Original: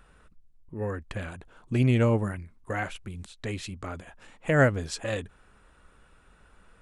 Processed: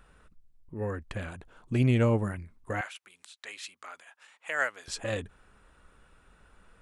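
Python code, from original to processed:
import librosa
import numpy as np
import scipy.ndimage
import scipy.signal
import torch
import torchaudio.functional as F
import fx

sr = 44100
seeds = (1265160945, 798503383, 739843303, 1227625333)

y = fx.highpass(x, sr, hz=1100.0, slope=12, at=(2.81, 4.88))
y = y * 10.0 ** (-1.5 / 20.0)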